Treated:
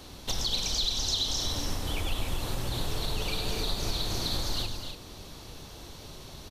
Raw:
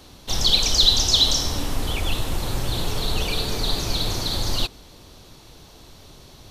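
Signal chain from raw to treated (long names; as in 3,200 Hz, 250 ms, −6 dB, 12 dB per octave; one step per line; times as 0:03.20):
downward compressor 6 to 1, threshold −28 dBFS, peak gain reduction 16 dB
on a send: loudspeakers that aren't time-aligned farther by 34 metres −9 dB, 85 metres −9 dB, 98 metres −9 dB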